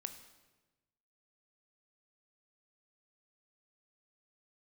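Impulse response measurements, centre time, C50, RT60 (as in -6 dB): 13 ms, 10.5 dB, 1.2 s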